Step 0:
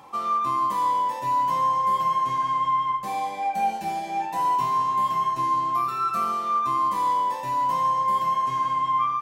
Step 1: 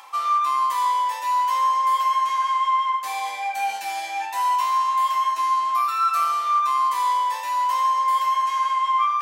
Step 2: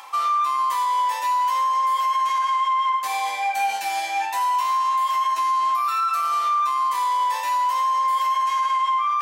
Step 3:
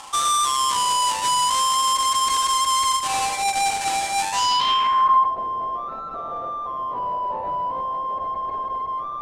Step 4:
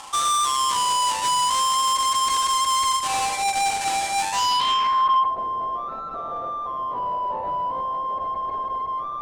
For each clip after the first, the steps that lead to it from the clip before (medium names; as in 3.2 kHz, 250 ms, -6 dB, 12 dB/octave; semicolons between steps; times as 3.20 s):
high-pass 1.3 kHz 12 dB/octave; reverse; upward compressor, threshold -32 dBFS; reverse; trim +7.5 dB
peak limiter -19.5 dBFS, peak gain reduction 8 dB; trim +3.5 dB
square wave that keeps the level; low-pass sweep 8.6 kHz -> 640 Hz, 4.30–5.37 s; trim -3 dB
saturation -13.5 dBFS, distortion -21 dB